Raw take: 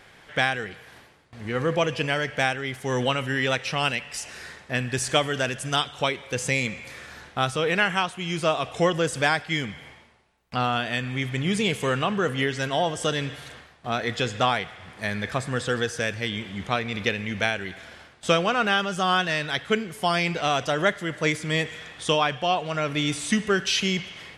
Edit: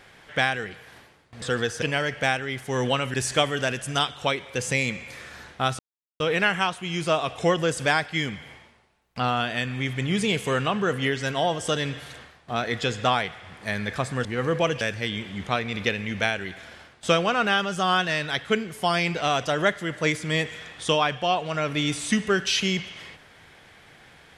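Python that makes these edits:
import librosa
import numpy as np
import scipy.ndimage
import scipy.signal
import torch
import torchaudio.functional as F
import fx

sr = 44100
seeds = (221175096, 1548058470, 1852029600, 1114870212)

y = fx.edit(x, sr, fx.swap(start_s=1.42, length_s=0.56, other_s=15.61, other_length_s=0.4),
    fx.cut(start_s=3.3, length_s=1.61),
    fx.insert_silence(at_s=7.56, length_s=0.41), tone=tone)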